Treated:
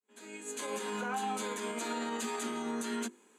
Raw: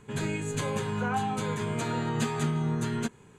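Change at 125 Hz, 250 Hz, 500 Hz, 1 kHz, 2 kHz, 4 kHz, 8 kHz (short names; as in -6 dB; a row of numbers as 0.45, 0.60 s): -25.0, -7.5, -5.0, -4.0, -4.5, -2.5, -0.5 dB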